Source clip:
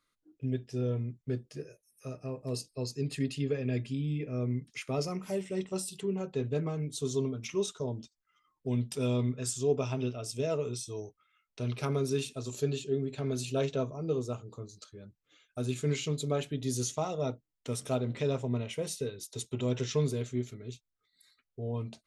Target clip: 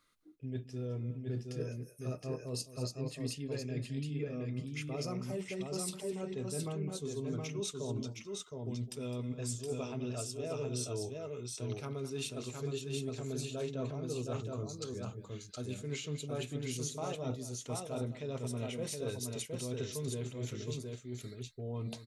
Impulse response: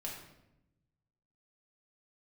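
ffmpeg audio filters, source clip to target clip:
-af "areverse,acompressor=threshold=-41dB:ratio=12,areverse,aecho=1:1:209|717:0.2|0.668,volume=5dB"

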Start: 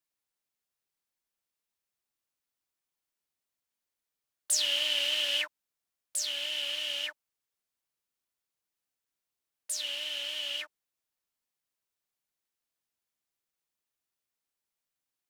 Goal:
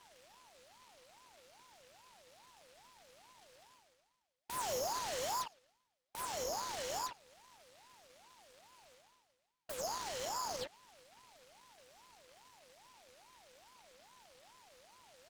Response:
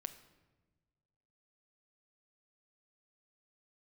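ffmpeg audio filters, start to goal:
-filter_complex "[0:a]afftfilt=real='re*pow(10,15/40*sin(2*PI*(0.73*log(max(b,1)*sr/1024/100)/log(2)-(-1.8)*(pts-256)/sr)))':imag='im*pow(10,15/40*sin(2*PI*(0.73*log(max(b,1)*sr/1024/100)/log(2)-(-1.8)*(pts-256)/sr)))':win_size=1024:overlap=0.75,lowpass=3.8k,asoftclip=type=tanh:threshold=-25.5dB,areverse,acompressor=mode=upward:threshold=-41dB:ratio=2.5,areverse,alimiter=level_in=10.5dB:limit=-24dB:level=0:latency=1:release=271,volume=-10.5dB,asplit=2[a][b];[b]adelay=112,lowpass=f=1.9k:p=1,volume=-23.5dB,asplit=2[c][d];[d]adelay=112,lowpass=f=1.9k:p=1,volume=0.44,asplit=2[e][f];[f]adelay=112,lowpass=f=1.9k:p=1,volume=0.44[g];[c][e][g]amix=inputs=3:normalize=0[h];[a][h]amix=inputs=2:normalize=0,aeval=exprs='abs(val(0))':c=same,lowshelf=f=290:g=-2.5,aeval=exprs='val(0)*sin(2*PI*760*n/s+760*0.35/2.4*sin(2*PI*2.4*n/s))':c=same,volume=6.5dB"

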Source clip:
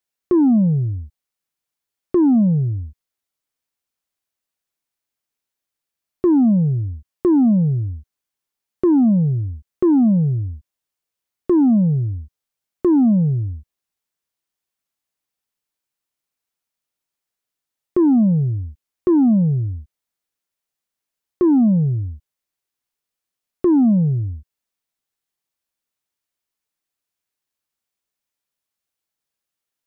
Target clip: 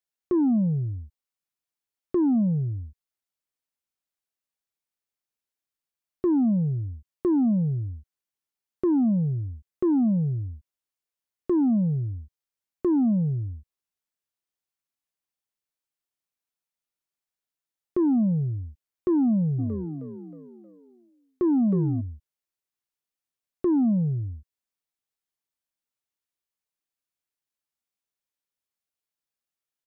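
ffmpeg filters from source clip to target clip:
-filter_complex "[0:a]asplit=3[a][b][c];[a]afade=t=out:st=19.58:d=0.02[d];[b]asplit=6[e][f][g][h][i][j];[f]adelay=314,afreqshift=36,volume=-8.5dB[k];[g]adelay=628,afreqshift=72,volume=-15.6dB[l];[h]adelay=942,afreqshift=108,volume=-22.8dB[m];[i]adelay=1256,afreqshift=144,volume=-29.9dB[n];[j]adelay=1570,afreqshift=180,volume=-37dB[o];[e][k][l][m][n][o]amix=inputs=6:normalize=0,afade=t=in:st=19.58:d=0.02,afade=t=out:st=22:d=0.02[p];[c]afade=t=in:st=22:d=0.02[q];[d][p][q]amix=inputs=3:normalize=0,volume=-7.5dB"

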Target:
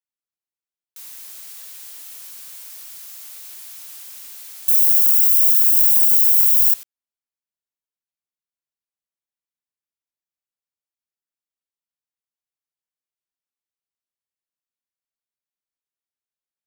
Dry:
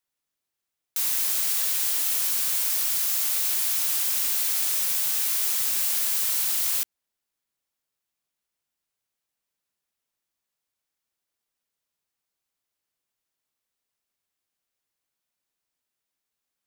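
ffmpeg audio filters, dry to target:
-filter_complex "[0:a]asettb=1/sr,asplit=3[a][b][c];[a]atrim=end=4.684[d];[b]atrim=start=4.68:end=6.74,asetpts=PTS-STARTPTS,afade=t=in:d=0.004:c=qsin,afade=t=out:st=2.056:d=0.004:c=qsin,aemphasis=mode=production:type=riaa[e];[c]atrim=start=6.736[f];[d][e]acrossfade=d=0.004:c1=hsin:c2=qsin[g];[g][f]acrossfade=d=0.004:c1=qsin:c2=hsin,volume=-13dB"

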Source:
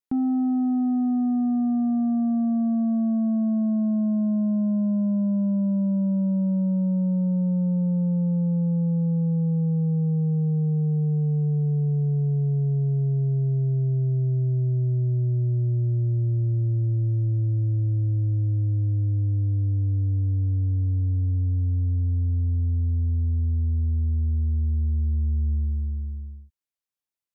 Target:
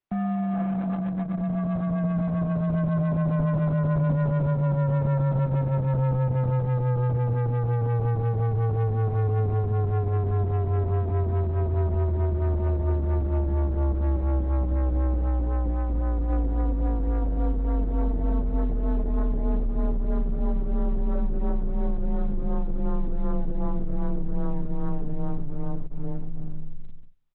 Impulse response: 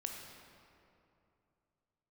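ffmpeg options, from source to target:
-filter_complex "[0:a]equalizer=f=80:t=o:w=1.1:g=2.5,aecho=1:1:639:0.562,asplit=2[a][b];[1:a]atrim=start_sample=2205,afade=t=out:st=0.31:d=0.01,atrim=end_sample=14112[c];[b][c]afir=irnorm=-1:irlink=0,volume=-16.5dB[d];[a][d]amix=inputs=2:normalize=0,asoftclip=type=hard:threshold=-30dB,lowpass=1k,dynaudnorm=f=810:g=7:m=4dB,afreqshift=-61,crystalizer=i=5:c=0,volume=4.5dB" -ar 48000 -c:a libopus -b:a 8k

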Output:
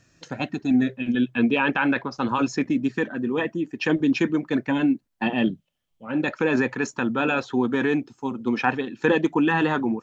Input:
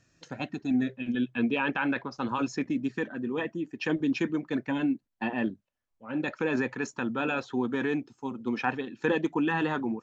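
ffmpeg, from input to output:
-filter_complex "[0:a]asettb=1/sr,asplit=3[a][b][c];[a]atrim=end=5.264[d];[b]atrim=start=5.26:end=6.08,asetpts=PTS-STARTPTS,afade=t=in:d=0.004:c=qsin,afade=t=out:st=0.816:d=0.004:c=qsin,equalizer=f=160:t=o:w=0.33:g=11,equalizer=f=1k:t=o:w=0.33:g=-5,equalizer=f=1.6k:t=o:w=0.33:g=-6,equalizer=f=3.15k:t=o:w=0.33:g=11[e];[c]atrim=start=6.076[f];[d][e]acrossfade=d=0.004:c1=hsin:c2=qsin[g];[g][f]acrossfade=d=0.004:c1=qsin:c2=hsin,volume=6.5dB"

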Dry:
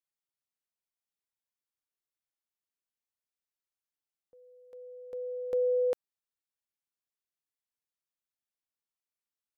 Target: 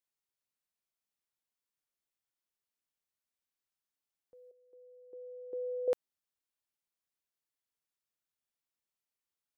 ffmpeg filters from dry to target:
-filter_complex "[0:a]asettb=1/sr,asplit=3[a][b][c];[a]atrim=end=4.514[d];[b]atrim=start=4.51:end=5.88,asetpts=PTS-STARTPTS,afade=t=in:d=0.004:c=qsin,afade=t=out:st=1.366:d=0.004:c=qsin,bandpass=f=350:t=q:w=4.3:csg=0[e];[c]atrim=start=5.876[f];[d][e]acrossfade=d=0.004:c1=hsin:c2=qsin[g];[g][f]acrossfade=d=0.004:c1=qsin:c2=hsin"

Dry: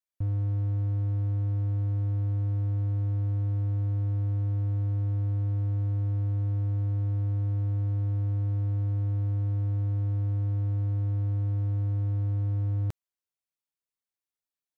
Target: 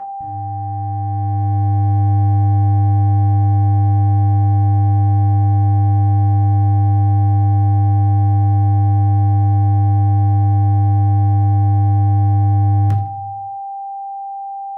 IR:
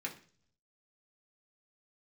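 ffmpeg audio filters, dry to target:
-filter_complex "[0:a]dynaudnorm=f=510:g=5:m=13dB,aeval=exprs='val(0)+0.0708*sin(2*PI*790*n/s)':c=same[a];[1:a]atrim=start_sample=2205,asetrate=33516,aresample=44100[b];[a][b]afir=irnorm=-1:irlink=0,volume=-2.5dB"

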